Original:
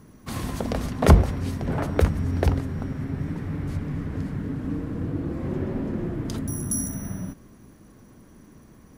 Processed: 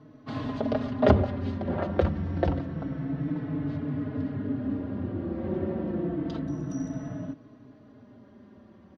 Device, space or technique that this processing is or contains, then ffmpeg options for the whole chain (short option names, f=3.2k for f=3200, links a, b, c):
barber-pole flanger into a guitar amplifier: -filter_complex "[0:a]asplit=2[a][b];[b]adelay=4.2,afreqshift=-0.28[c];[a][c]amix=inputs=2:normalize=1,asoftclip=type=tanh:threshold=-8dB,highpass=93,equalizer=f=290:t=q:w=4:g=6,equalizer=f=620:t=q:w=4:g=8,equalizer=f=2.3k:t=q:w=4:g=-5,lowpass=f=4k:w=0.5412,lowpass=f=4k:w=1.3066"